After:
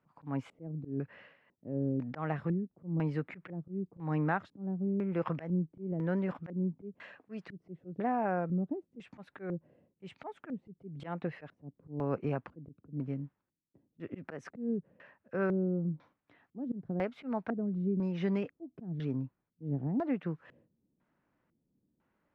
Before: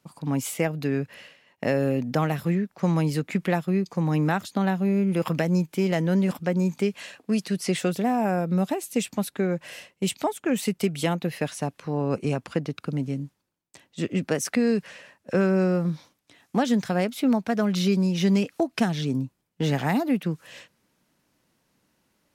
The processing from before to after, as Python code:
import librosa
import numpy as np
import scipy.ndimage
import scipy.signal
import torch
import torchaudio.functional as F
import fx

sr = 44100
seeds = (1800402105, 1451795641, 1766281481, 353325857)

y = fx.dynamic_eq(x, sr, hz=210.0, q=2.6, threshold_db=-34.0, ratio=4.0, max_db=-5)
y = fx.filter_lfo_lowpass(y, sr, shape='square', hz=1.0, low_hz=300.0, high_hz=1600.0, q=1.2)
y = fx.auto_swell(y, sr, attack_ms=145.0)
y = y * 10.0 ** (-7.0 / 20.0)